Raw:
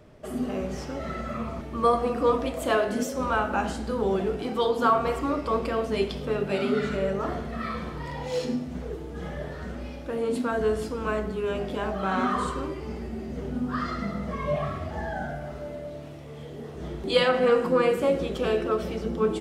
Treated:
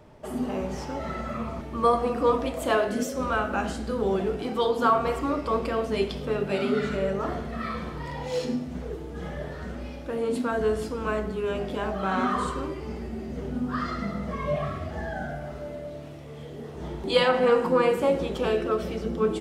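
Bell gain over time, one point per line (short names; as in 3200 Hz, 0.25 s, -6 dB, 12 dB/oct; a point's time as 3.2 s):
bell 900 Hz 0.24 oct
+11 dB
from 1.3 s +3 dB
from 2.87 s -6.5 dB
from 4.07 s +0.5 dB
from 14.48 s -7 dB
from 15.32 s -0.5 dB
from 16.75 s +9 dB
from 18.49 s -2.5 dB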